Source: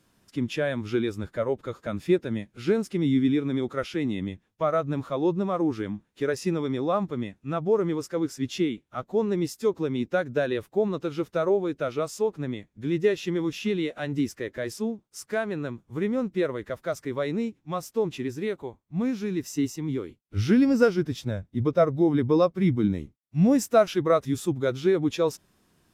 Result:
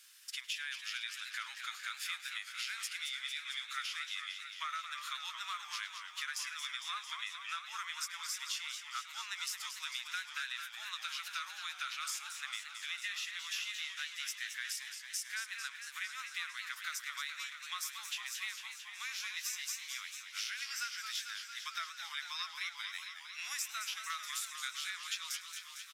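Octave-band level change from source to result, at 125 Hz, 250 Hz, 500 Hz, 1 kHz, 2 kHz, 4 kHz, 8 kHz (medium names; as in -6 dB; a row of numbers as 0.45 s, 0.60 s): under -40 dB, under -40 dB, under -40 dB, -11.0 dB, -1.5 dB, +3.5 dB, +2.5 dB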